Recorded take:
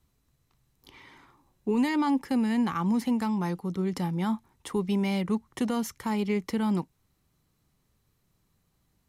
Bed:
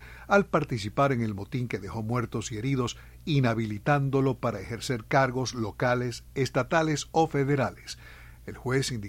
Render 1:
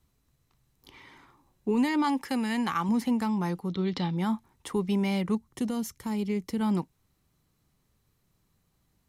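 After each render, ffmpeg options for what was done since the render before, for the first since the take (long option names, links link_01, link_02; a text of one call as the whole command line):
ffmpeg -i in.wav -filter_complex "[0:a]asettb=1/sr,asplit=3[link_01][link_02][link_03];[link_01]atrim=end=2.044[link_04];[link_02]atrim=start=2.04:end=2.89,asetpts=PTS-STARTPTS,afade=type=in:duration=0.004:curve=qsin,afade=type=out:start_time=0.846:duration=0.004:curve=qsin,tiltshelf=frequency=640:gain=-5[link_05];[link_03]atrim=start=2.886[link_06];[link_04][link_05]acrossfade=duration=0.004:curve1=hsin:curve2=qsin[link_07];[link_07][link_06]acrossfade=duration=0.004:curve1=qsin:curve2=hsin,asettb=1/sr,asplit=3[link_08][link_09][link_10];[link_08]atrim=end=3.694[link_11];[link_09]atrim=start=3.69:end=4.17,asetpts=PTS-STARTPTS,afade=type=in:duration=0.004:curve=qsin,afade=type=out:start_time=0.476:duration=0.004:curve=qsin,lowpass=frequency=3800:width_type=q:width=4.3[link_12];[link_10]atrim=start=4.166[link_13];[link_11][link_12]acrossfade=duration=0.004:curve1=hsin:curve2=qsin[link_14];[link_14][link_13]acrossfade=duration=0.004:curve1=qsin:curve2=hsin,asettb=1/sr,asplit=3[link_15][link_16][link_17];[link_15]atrim=end=5.354[link_18];[link_16]atrim=start=5.35:end=6.61,asetpts=PTS-STARTPTS,afade=type=in:duration=0.004:curve=qsin,afade=type=out:start_time=1.256:duration=0.004:curve=qsin,equalizer=frequency=1300:width=0.41:gain=-8[link_19];[link_17]atrim=start=6.606[link_20];[link_18][link_19]acrossfade=duration=0.004:curve1=hsin:curve2=qsin[link_21];[link_21][link_20]acrossfade=duration=0.004:curve1=qsin:curve2=hsin" out.wav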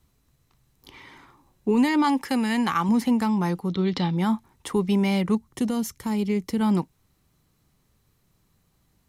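ffmpeg -i in.wav -af "volume=5dB" out.wav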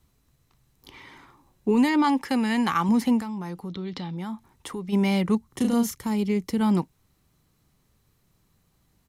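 ffmpeg -i in.wav -filter_complex "[0:a]asettb=1/sr,asplit=3[link_01][link_02][link_03];[link_01]atrim=end=1.904[link_04];[link_02]atrim=start=1.9:end=2.57,asetpts=PTS-STARTPTS,afade=type=in:duration=0.004:curve=qsin,afade=type=out:start_time=0.666:duration=0.004:curve=qsin,highshelf=frequency=7700:gain=-6[link_05];[link_03]atrim=start=2.566[link_06];[link_04][link_05]acrossfade=duration=0.004:curve1=hsin:curve2=qsin[link_07];[link_07][link_06]acrossfade=duration=0.004:curve1=qsin:curve2=hsin,asplit=3[link_08][link_09][link_10];[link_08]afade=type=out:start_time=3.2:duration=0.02[link_11];[link_09]acompressor=threshold=-34dB:ratio=2.5:attack=3.2:release=140:knee=1:detection=peak,afade=type=in:start_time=3.2:duration=0.02,afade=type=out:start_time=4.92:duration=0.02[link_12];[link_10]afade=type=in:start_time=4.92:duration=0.02[link_13];[link_11][link_12][link_13]amix=inputs=3:normalize=0,asplit=3[link_14][link_15][link_16];[link_14]afade=type=out:start_time=5.49:duration=0.02[link_17];[link_15]asplit=2[link_18][link_19];[link_19]adelay=34,volume=-2.5dB[link_20];[link_18][link_20]amix=inputs=2:normalize=0,afade=type=in:start_time=5.49:duration=0.02,afade=type=out:start_time=5.94:duration=0.02[link_21];[link_16]afade=type=in:start_time=5.94:duration=0.02[link_22];[link_17][link_21][link_22]amix=inputs=3:normalize=0" out.wav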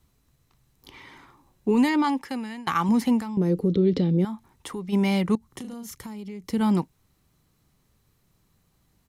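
ffmpeg -i in.wav -filter_complex "[0:a]asettb=1/sr,asplit=3[link_01][link_02][link_03];[link_01]atrim=end=3.374[link_04];[link_02]atrim=start=3.37:end=4.25,asetpts=PTS-STARTPTS,afade=type=in:duration=0.004:curve=qsin,afade=type=out:start_time=0.876:duration=0.004:curve=qsin,lowshelf=frequency=650:width_type=q:width=3:gain=10.5[link_05];[link_03]atrim=start=4.246[link_06];[link_04][link_05]acrossfade=duration=0.004:curve1=hsin:curve2=qsin[link_07];[link_07][link_06]acrossfade=duration=0.004:curve1=qsin:curve2=hsin,asettb=1/sr,asplit=3[link_08][link_09][link_10];[link_08]atrim=end=5.354[link_11];[link_09]atrim=start=5.35:end=6.5,asetpts=PTS-STARTPTS,afade=type=in:duration=0.004:curve=qsin,afade=type=out:start_time=1.146:duration=0.004:curve=qsin,acompressor=threshold=-33dB:ratio=16:attack=3.2:release=140:knee=1:detection=peak[link_12];[link_10]atrim=start=6.496[link_13];[link_11][link_12]acrossfade=duration=0.004:curve1=hsin:curve2=qsin[link_14];[link_14][link_13]acrossfade=duration=0.004:curve1=qsin:curve2=hsin,asplit=2[link_15][link_16];[link_15]atrim=end=2.67,asetpts=PTS-STARTPTS,afade=type=out:start_time=1.88:duration=0.79:silence=0.0891251[link_17];[link_16]atrim=start=2.67,asetpts=PTS-STARTPTS,afade=type=in:duration=0.004:curve=hsin:silence=0.0891251[link_18];[link_17][link_18]concat=n=2:v=0:a=1" out.wav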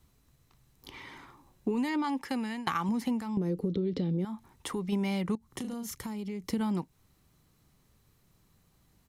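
ffmpeg -i in.wav -af "acompressor=threshold=-27dB:ratio=10" out.wav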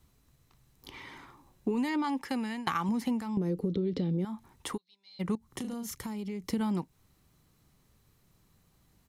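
ffmpeg -i in.wav -filter_complex "[0:a]asplit=3[link_01][link_02][link_03];[link_01]afade=type=out:start_time=4.76:duration=0.02[link_04];[link_02]bandpass=frequency=4100:width_type=q:width=17,afade=type=in:start_time=4.76:duration=0.02,afade=type=out:start_time=5.19:duration=0.02[link_05];[link_03]afade=type=in:start_time=5.19:duration=0.02[link_06];[link_04][link_05][link_06]amix=inputs=3:normalize=0" out.wav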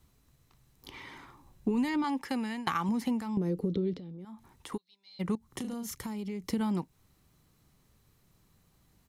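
ffmpeg -i in.wav -filter_complex "[0:a]asettb=1/sr,asplit=3[link_01][link_02][link_03];[link_01]atrim=end=1.214[link_04];[link_02]atrim=start=1.21:end=2.04,asetpts=PTS-STARTPTS,afade=type=in:duration=0.004:curve=qsin,afade=type=out:start_time=0.826:duration=0.004:curve=qsin,asubboost=boost=10:cutoff=210[link_05];[link_03]atrim=start=2.036[link_06];[link_04][link_05]acrossfade=duration=0.004:curve1=hsin:curve2=qsin[link_07];[link_07][link_06]acrossfade=duration=0.004:curve1=qsin:curve2=hsin,asettb=1/sr,asplit=3[link_08][link_09][link_10];[link_08]atrim=end=3.944[link_11];[link_09]atrim=start=3.94:end=4.72,asetpts=PTS-STARTPTS,afade=type=in:duration=0.004:curve=qsin,afade=type=out:start_time=0.776:duration=0.004:curve=qsin,acompressor=threshold=-44dB:ratio=4:attack=3.2:release=140:knee=1:detection=peak[link_12];[link_10]atrim=start=4.716[link_13];[link_11][link_12]acrossfade=duration=0.004:curve1=hsin:curve2=qsin[link_14];[link_14][link_13]acrossfade=duration=0.004:curve1=qsin:curve2=hsin" out.wav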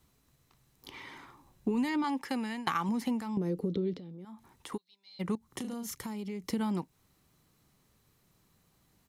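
ffmpeg -i in.wav -af "lowshelf=frequency=100:gain=-8.5" out.wav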